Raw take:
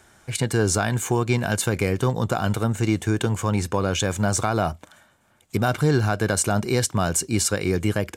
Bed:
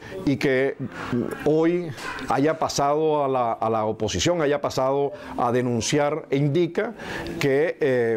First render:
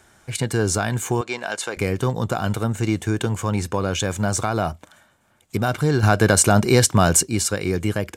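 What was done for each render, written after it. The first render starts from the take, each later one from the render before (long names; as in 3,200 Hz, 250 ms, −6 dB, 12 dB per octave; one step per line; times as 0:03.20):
0:01.21–0:01.77: band-pass filter 480–7,300 Hz
0:06.03–0:07.23: clip gain +6.5 dB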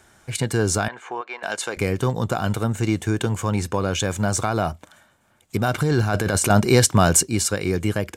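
0:00.88–0:01.43: band-pass filter 690–2,100 Hz
0:05.74–0:06.50: compressor whose output falls as the input rises −20 dBFS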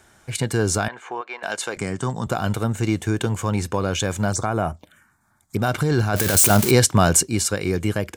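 0:01.77–0:02.27: loudspeaker in its box 130–8,800 Hz, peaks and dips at 330 Hz −5 dB, 490 Hz −9 dB, 2,500 Hz −8 dB, 4,000 Hz −6 dB, 8,000 Hz +9 dB
0:04.32–0:05.59: phaser swept by the level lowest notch 460 Hz, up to 4,500 Hz, full sweep at −19.5 dBFS
0:06.16–0:06.71: spike at every zero crossing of −11 dBFS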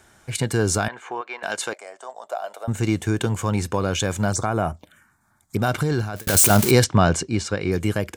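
0:01.73–0:02.68: four-pole ladder high-pass 580 Hz, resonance 70%
0:05.63–0:06.27: fade out equal-power
0:06.84–0:07.72: high-frequency loss of the air 120 metres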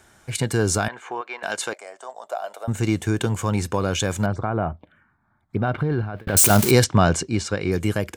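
0:04.26–0:06.37: high-frequency loss of the air 450 metres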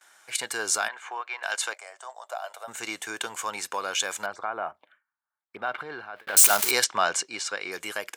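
noise gate with hold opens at −45 dBFS
high-pass filter 920 Hz 12 dB per octave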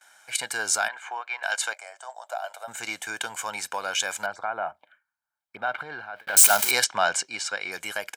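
comb filter 1.3 ms, depth 47%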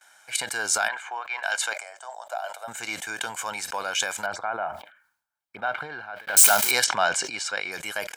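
level that may fall only so fast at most 100 dB per second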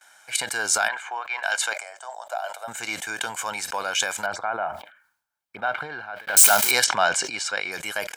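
level +2 dB
brickwall limiter −2 dBFS, peak gain reduction 1.5 dB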